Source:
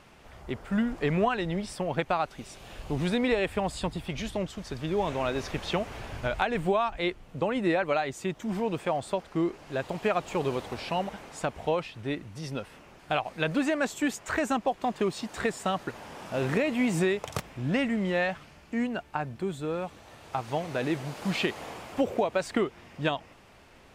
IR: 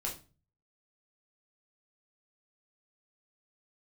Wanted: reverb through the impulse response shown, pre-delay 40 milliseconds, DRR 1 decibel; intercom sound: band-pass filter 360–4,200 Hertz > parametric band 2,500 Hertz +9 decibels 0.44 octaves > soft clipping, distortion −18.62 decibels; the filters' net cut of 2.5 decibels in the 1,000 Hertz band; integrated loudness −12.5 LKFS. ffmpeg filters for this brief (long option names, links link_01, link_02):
-filter_complex "[0:a]equalizer=frequency=1000:width_type=o:gain=-3.5,asplit=2[link_01][link_02];[1:a]atrim=start_sample=2205,adelay=40[link_03];[link_02][link_03]afir=irnorm=-1:irlink=0,volume=-3dB[link_04];[link_01][link_04]amix=inputs=2:normalize=0,highpass=360,lowpass=4200,equalizer=frequency=2500:width_type=o:width=0.44:gain=9,asoftclip=threshold=-18dB,volume=17.5dB"